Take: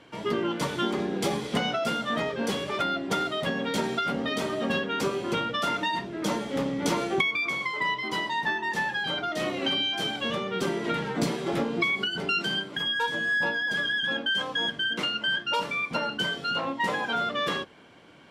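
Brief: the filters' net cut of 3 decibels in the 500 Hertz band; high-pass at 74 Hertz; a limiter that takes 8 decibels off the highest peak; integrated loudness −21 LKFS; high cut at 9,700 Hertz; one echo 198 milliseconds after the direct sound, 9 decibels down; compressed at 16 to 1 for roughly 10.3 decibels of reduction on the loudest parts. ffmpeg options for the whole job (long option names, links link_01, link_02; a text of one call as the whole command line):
ffmpeg -i in.wav -af "highpass=74,lowpass=9700,equalizer=frequency=500:width_type=o:gain=-4,acompressor=threshold=-31dB:ratio=16,alimiter=level_in=4.5dB:limit=-24dB:level=0:latency=1,volume=-4.5dB,aecho=1:1:198:0.355,volume=14.5dB" out.wav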